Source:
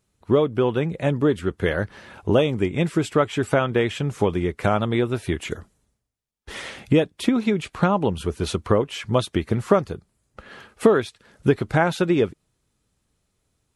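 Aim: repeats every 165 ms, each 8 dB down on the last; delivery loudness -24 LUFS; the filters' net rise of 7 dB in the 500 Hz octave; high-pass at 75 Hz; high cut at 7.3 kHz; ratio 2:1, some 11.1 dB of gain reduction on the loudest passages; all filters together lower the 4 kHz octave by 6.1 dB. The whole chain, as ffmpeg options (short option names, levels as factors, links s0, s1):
-af "highpass=75,lowpass=7300,equalizer=f=500:t=o:g=8.5,equalizer=f=4000:t=o:g=-8,acompressor=threshold=0.0562:ratio=2,aecho=1:1:165|330|495|660|825:0.398|0.159|0.0637|0.0255|0.0102,volume=1.12"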